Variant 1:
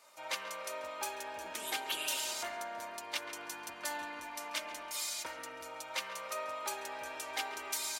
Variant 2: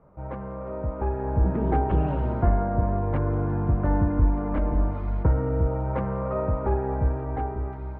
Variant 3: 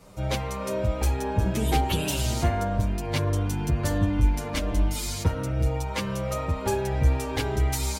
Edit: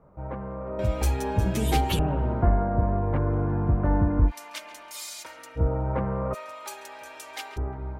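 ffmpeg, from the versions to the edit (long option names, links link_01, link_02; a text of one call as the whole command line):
ffmpeg -i take0.wav -i take1.wav -i take2.wav -filter_complex "[0:a]asplit=2[link_01][link_02];[1:a]asplit=4[link_03][link_04][link_05][link_06];[link_03]atrim=end=0.792[link_07];[2:a]atrim=start=0.788:end=1.992[link_08];[link_04]atrim=start=1.988:end=4.32[link_09];[link_01]atrim=start=4.26:end=5.61[link_10];[link_05]atrim=start=5.55:end=6.35[link_11];[link_02]atrim=start=6.33:end=7.58[link_12];[link_06]atrim=start=7.56[link_13];[link_07][link_08]acrossfade=duration=0.004:curve1=hsin:curve2=hsin[link_14];[link_14][link_09]acrossfade=duration=0.004:curve1=hsin:curve2=hsin[link_15];[link_15][link_10]acrossfade=duration=0.06:curve1=tri:curve2=tri[link_16];[link_16][link_11]acrossfade=duration=0.06:curve1=tri:curve2=tri[link_17];[link_17][link_12]acrossfade=duration=0.02:curve1=tri:curve2=tri[link_18];[link_18][link_13]acrossfade=duration=0.02:curve1=tri:curve2=tri" out.wav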